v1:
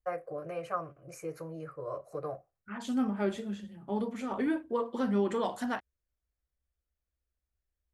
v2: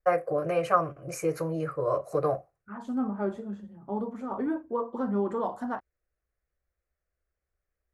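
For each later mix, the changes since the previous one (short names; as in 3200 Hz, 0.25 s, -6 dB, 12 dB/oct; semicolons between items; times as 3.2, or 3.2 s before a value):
first voice +11.0 dB; second voice: add resonant high shelf 1700 Hz -12.5 dB, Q 1.5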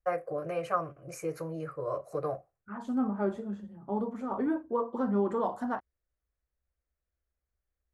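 first voice -6.5 dB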